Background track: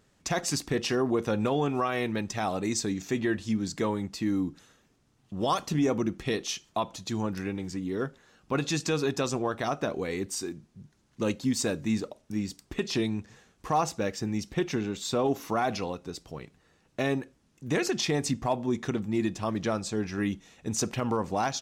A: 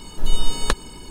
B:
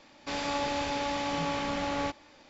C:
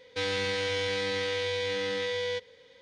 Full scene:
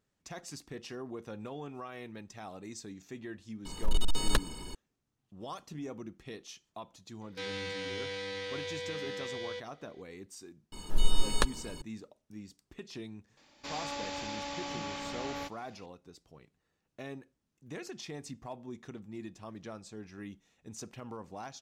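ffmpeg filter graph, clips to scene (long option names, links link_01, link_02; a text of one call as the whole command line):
ffmpeg -i bed.wav -i cue0.wav -i cue1.wav -i cue2.wav -filter_complex "[1:a]asplit=2[link_01][link_02];[0:a]volume=-15.5dB[link_03];[link_01]asoftclip=type=hard:threshold=-14dB[link_04];[2:a]highshelf=frequency=3600:gain=8.5[link_05];[link_04]atrim=end=1.1,asetpts=PTS-STARTPTS,volume=-4.5dB,afade=type=in:duration=0.004:curve=hsin,afade=type=out:start_time=1.096:duration=0.004:curve=hsin,adelay=160965S[link_06];[3:a]atrim=end=2.81,asetpts=PTS-STARTPTS,volume=-8.5dB,afade=type=in:duration=0.004:curve=hsin,afade=type=out:start_time=2.806:duration=0.004:curve=hsin,adelay=7210[link_07];[link_02]atrim=end=1.1,asetpts=PTS-STARTPTS,volume=-6.5dB,afade=type=in:duration=0.004:curve=hsin,afade=type=out:start_time=1.096:duration=0.004:curve=hsin,adelay=10720[link_08];[link_05]atrim=end=2.49,asetpts=PTS-STARTPTS,volume=-9dB,afade=type=in:duration=0.004:curve=hsin,afade=type=out:start_time=2.486:duration=0.004:curve=hsin,adelay=13370[link_09];[link_03][link_06][link_07][link_08][link_09]amix=inputs=5:normalize=0" out.wav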